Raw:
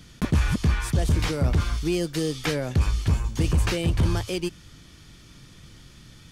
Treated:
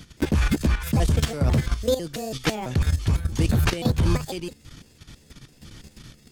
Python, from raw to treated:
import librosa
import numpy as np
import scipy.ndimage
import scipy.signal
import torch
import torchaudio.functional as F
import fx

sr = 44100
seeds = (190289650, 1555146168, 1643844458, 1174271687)

y = fx.pitch_trill(x, sr, semitones=6.5, every_ms=166)
y = fx.level_steps(y, sr, step_db=12)
y = y * librosa.db_to_amplitude(5.5)